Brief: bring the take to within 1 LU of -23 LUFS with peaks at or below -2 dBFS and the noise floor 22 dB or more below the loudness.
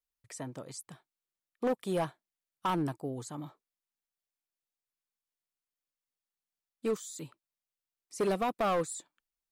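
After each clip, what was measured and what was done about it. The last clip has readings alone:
clipped samples 1.2%; clipping level -25.0 dBFS; loudness -34.5 LUFS; peak level -25.0 dBFS; loudness target -23.0 LUFS
-> clip repair -25 dBFS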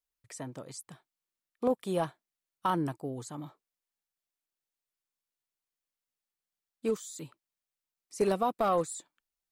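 clipped samples 0.0%; loudness -33.0 LUFS; peak level -17.0 dBFS; loudness target -23.0 LUFS
-> trim +10 dB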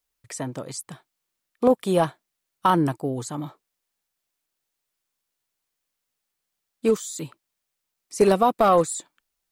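loudness -23.0 LUFS; peak level -7.0 dBFS; noise floor -82 dBFS

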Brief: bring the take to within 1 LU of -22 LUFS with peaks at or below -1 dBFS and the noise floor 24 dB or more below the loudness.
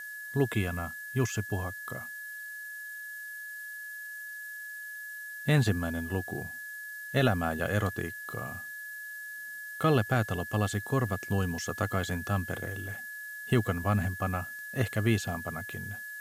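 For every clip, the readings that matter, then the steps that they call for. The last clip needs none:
steady tone 1.7 kHz; tone level -39 dBFS; noise floor -42 dBFS; noise floor target -57 dBFS; loudness -32.5 LUFS; peak level -12.5 dBFS; loudness target -22.0 LUFS
-> band-stop 1.7 kHz, Q 30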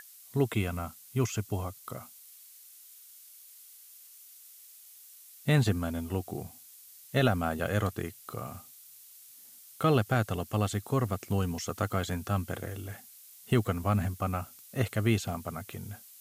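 steady tone not found; noise floor -53 dBFS; noise floor target -56 dBFS
-> noise reduction 6 dB, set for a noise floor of -53 dBFS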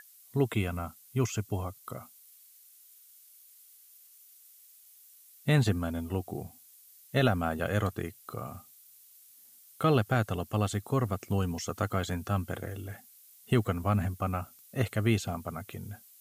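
noise floor -57 dBFS; loudness -31.5 LUFS; peak level -13.0 dBFS; loudness target -22.0 LUFS
-> trim +9.5 dB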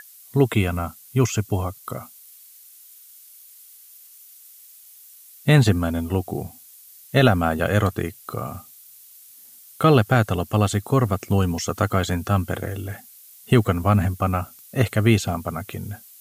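loudness -22.0 LUFS; peak level -3.5 dBFS; noise floor -48 dBFS

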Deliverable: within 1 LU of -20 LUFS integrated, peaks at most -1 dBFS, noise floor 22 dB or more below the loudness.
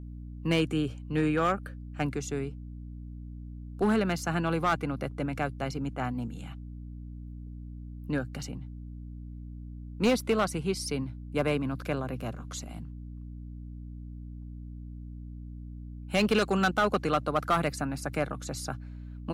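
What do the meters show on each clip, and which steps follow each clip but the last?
clipped samples 0.4%; clipping level -18.5 dBFS; hum 60 Hz; highest harmonic 300 Hz; hum level -39 dBFS; loudness -30.0 LUFS; peak level -18.5 dBFS; loudness target -20.0 LUFS
-> clip repair -18.5 dBFS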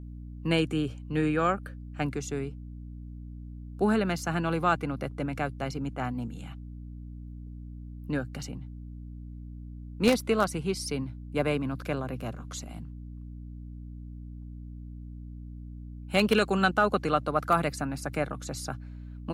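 clipped samples 0.0%; hum 60 Hz; highest harmonic 300 Hz; hum level -39 dBFS
-> hum notches 60/120/180/240/300 Hz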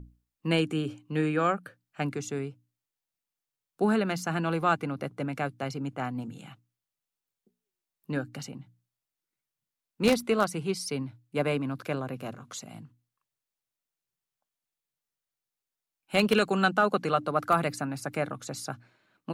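hum not found; loudness -29.5 LUFS; peak level -9.5 dBFS; loudness target -20.0 LUFS
-> trim +9.5 dB; peak limiter -1 dBFS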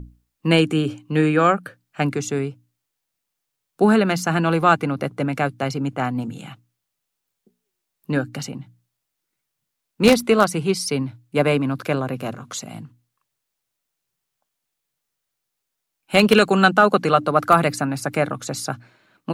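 loudness -20.0 LUFS; peak level -1.0 dBFS; noise floor -80 dBFS

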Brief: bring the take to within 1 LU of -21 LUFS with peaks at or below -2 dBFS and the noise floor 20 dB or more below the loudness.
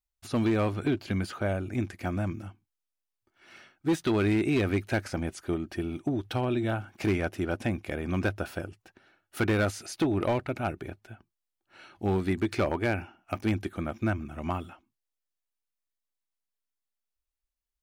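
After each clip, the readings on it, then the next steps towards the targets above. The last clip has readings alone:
clipped samples 1.0%; clipping level -20.0 dBFS; loudness -30.0 LUFS; peak level -20.0 dBFS; loudness target -21.0 LUFS
-> clip repair -20 dBFS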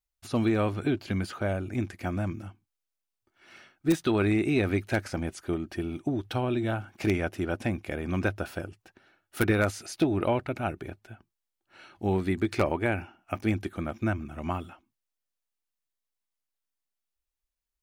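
clipped samples 0.0%; loudness -29.5 LUFS; peak level -11.0 dBFS; loudness target -21.0 LUFS
-> trim +8.5 dB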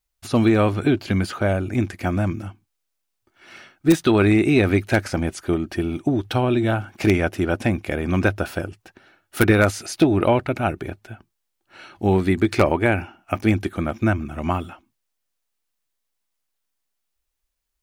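loudness -21.0 LUFS; peak level -2.5 dBFS; noise floor -77 dBFS

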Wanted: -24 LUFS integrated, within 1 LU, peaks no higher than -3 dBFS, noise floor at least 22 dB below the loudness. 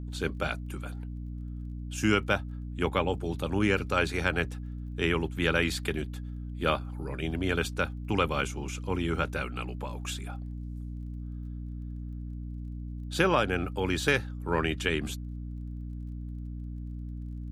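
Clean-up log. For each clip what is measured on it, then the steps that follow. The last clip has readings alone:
tick rate 21 per s; hum 60 Hz; highest harmonic 300 Hz; hum level -35 dBFS; loudness -31.5 LUFS; peak level -11.0 dBFS; loudness target -24.0 LUFS
-> de-click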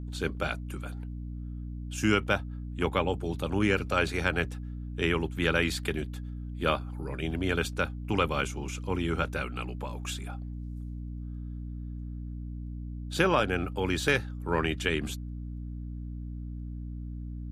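tick rate 0 per s; hum 60 Hz; highest harmonic 300 Hz; hum level -35 dBFS
-> hum notches 60/120/180/240/300 Hz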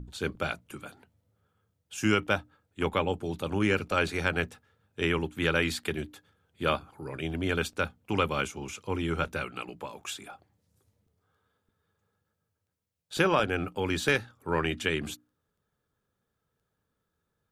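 hum not found; loudness -30.0 LUFS; peak level -11.5 dBFS; loudness target -24.0 LUFS
-> trim +6 dB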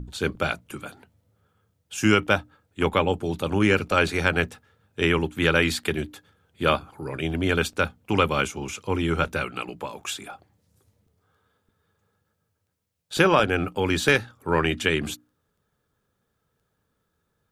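loudness -24.0 LUFS; peak level -5.5 dBFS; noise floor -75 dBFS

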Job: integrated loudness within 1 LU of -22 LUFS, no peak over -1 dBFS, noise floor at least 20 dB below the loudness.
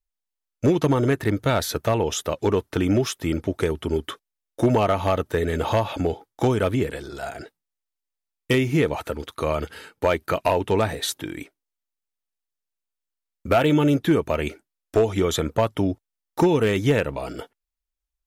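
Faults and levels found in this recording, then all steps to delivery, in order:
clipped samples 0.3%; clipping level -11.0 dBFS; loudness -23.0 LUFS; peak level -11.0 dBFS; loudness target -22.0 LUFS
-> clip repair -11 dBFS; trim +1 dB

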